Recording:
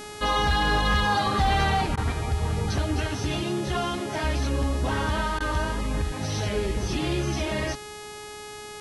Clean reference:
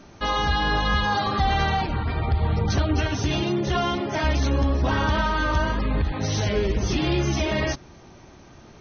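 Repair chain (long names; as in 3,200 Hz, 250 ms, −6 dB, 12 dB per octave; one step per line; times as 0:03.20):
clipped peaks rebuilt −16 dBFS
hum removal 419.3 Hz, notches 27
repair the gap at 0:01.96/0:05.39, 12 ms
level correction +4 dB, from 0:02.12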